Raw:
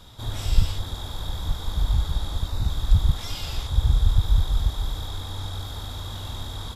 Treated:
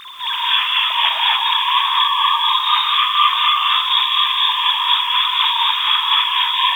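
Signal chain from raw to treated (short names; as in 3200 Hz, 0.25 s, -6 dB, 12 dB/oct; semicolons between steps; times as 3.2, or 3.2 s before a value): sine-wave speech; 1.35–3.66 bell 1200 Hz +9.5 dB 0.23 oct; limiter -16 dBFS, peak gain reduction 8 dB; tremolo triangle 4.1 Hz, depth 75%; bit-crush 9-bit; non-linear reverb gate 0.3 s rising, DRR -7 dB; gain +3 dB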